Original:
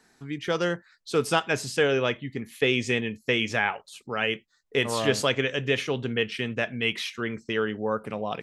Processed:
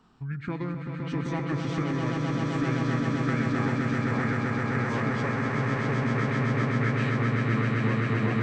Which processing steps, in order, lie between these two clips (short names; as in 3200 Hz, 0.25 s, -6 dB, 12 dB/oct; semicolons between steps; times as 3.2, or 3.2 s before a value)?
tone controls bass +8 dB, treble -10 dB; compressor, threshold -29 dBFS, peak gain reduction 13 dB; swelling echo 0.13 s, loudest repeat 8, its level -4.5 dB; formant shift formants -6 st